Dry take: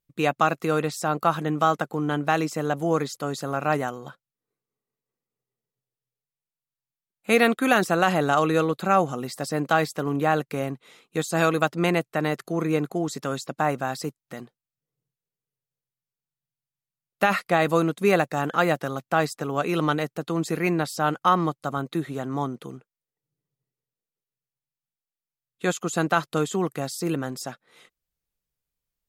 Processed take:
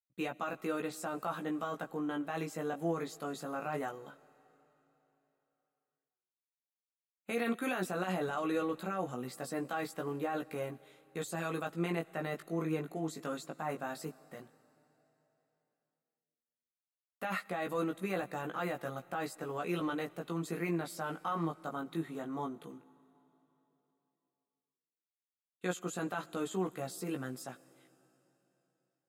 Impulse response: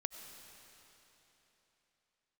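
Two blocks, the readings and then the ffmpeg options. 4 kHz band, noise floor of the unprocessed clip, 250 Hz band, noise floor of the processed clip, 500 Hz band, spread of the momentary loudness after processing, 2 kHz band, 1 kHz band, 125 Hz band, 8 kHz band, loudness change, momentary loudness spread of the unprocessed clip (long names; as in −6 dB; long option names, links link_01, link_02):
−14.5 dB, below −85 dBFS, −11.0 dB, below −85 dBFS, −13.0 dB, 8 LU, −14.5 dB, −15.0 dB, −13.5 dB, −12.0 dB, −13.0 dB, 10 LU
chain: -filter_complex "[0:a]highpass=frequency=110:poles=1,agate=range=-33dB:threshold=-47dB:ratio=3:detection=peak,equalizer=frequency=5400:width_type=o:width=0.59:gain=-6.5,alimiter=limit=-15dB:level=0:latency=1:release=15,flanger=delay=16:depth=2.7:speed=0.11,asplit=2[link_01][link_02];[1:a]atrim=start_sample=2205,highshelf=frequency=8900:gain=11.5[link_03];[link_02][link_03]afir=irnorm=-1:irlink=0,volume=-12dB[link_04];[link_01][link_04]amix=inputs=2:normalize=0,volume=-8.5dB"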